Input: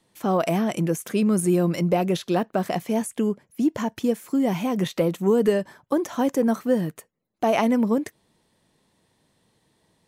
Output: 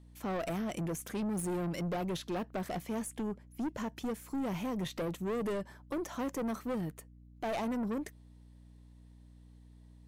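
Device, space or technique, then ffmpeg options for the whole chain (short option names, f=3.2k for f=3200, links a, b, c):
valve amplifier with mains hum: -af "aeval=exprs='(tanh(15.8*val(0)+0.2)-tanh(0.2))/15.8':c=same,aeval=exprs='val(0)+0.00447*(sin(2*PI*60*n/s)+sin(2*PI*2*60*n/s)/2+sin(2*PI*3*60*n/s)/3+sin(2*PI*4*60*n/s)/4+sin(2*PI*5*60*n/s)/5)':c=same,volume=-7.5dB"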